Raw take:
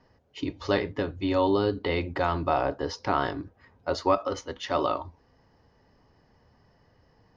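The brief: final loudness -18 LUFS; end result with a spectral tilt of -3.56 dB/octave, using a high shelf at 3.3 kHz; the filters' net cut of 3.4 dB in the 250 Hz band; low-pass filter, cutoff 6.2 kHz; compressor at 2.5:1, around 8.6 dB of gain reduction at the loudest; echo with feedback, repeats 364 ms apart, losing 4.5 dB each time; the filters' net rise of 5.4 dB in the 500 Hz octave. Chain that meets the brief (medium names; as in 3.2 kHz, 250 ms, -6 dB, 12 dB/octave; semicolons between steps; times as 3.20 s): low-pass 6.2 kHz; peaking EQ 250 Hz -8.5 dB; peaking EQ 500 Hz +8.5 dB; treble shelf 3.3 kHz +4.5 dB; compression 2.5:1, threshold -28 dBFS; feedback delay 364 ms, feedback 60%, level -4.5 dB; trim +12 dB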